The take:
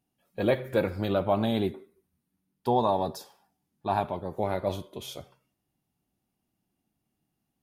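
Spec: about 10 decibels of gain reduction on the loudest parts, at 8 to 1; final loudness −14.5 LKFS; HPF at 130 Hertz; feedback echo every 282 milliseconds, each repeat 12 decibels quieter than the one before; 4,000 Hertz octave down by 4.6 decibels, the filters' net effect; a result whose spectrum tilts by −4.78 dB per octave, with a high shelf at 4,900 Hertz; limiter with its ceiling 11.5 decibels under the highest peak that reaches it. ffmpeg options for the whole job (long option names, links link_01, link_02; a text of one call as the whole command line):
ffmpeg -i in.wav -af "highpass=130,equalizer=frequency=4000:width_type=o:gain=-9,highshelf=frequency=4900:gain=8,acompressor=threshold=-30dB:ratio=8,alimiter=level_in=5dB:limit=-24dB:level=0:latency=1,volume=-5dB,aecho=1:1:282|564|846:0.251|0.0628|0.0157,volume=26.5dB" out.wav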